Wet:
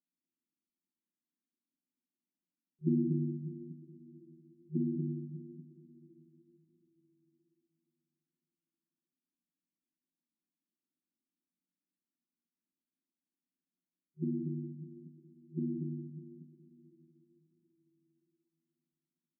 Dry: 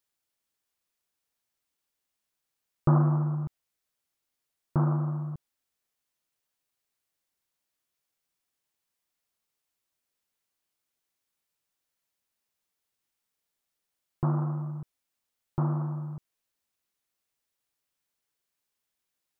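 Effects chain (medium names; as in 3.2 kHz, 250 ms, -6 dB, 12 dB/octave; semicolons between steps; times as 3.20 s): loudspeakers at several distances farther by 71 m -10 dB, 82 m -4 dB; FFT band-pass 160–370 Hz; two-slope reverb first 0.52 s, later 4.1 s, from -18 dB, DRR 0.5 dB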